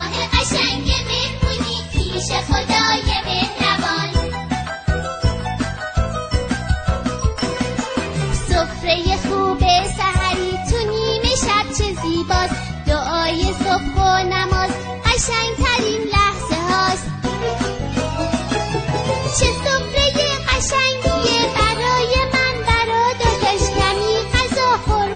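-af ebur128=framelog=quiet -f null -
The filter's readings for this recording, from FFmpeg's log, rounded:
Integrated loudness:
  I:         -18.1 LUFS
  Threshold: -28.1 LUFS
Loudness range:
  LRA:         4.7 LU
  Threshold: -38.2 LUFS
  LRA low:   -21.0 LUFS
  LRA high:  -16.3 LUFS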